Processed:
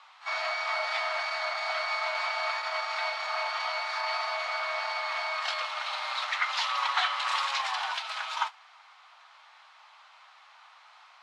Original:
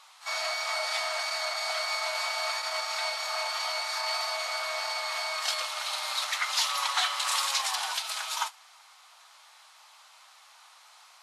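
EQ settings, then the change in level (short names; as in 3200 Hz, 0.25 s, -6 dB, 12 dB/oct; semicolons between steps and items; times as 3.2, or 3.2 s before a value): BPF 610–2800 Hz; +3.0 dB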